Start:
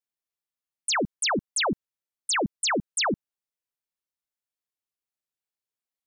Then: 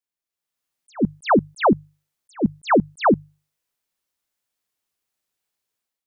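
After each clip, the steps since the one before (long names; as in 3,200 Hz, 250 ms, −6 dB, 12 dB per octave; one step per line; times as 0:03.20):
mains-hum notches 50/100/150 Hz
automatic gain control gain up to 11 dB
level that may rise only so fast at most 410 dB per second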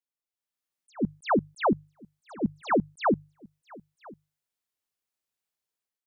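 single-tap delay 998 ms −23.5 dB
level −7.5 dB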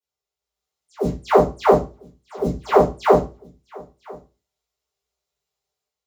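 one scale factor per block 5 bits
convolution reverb RT60 0.30 s, pre-delay 3 ms, DRR −16 dB
level −10 dB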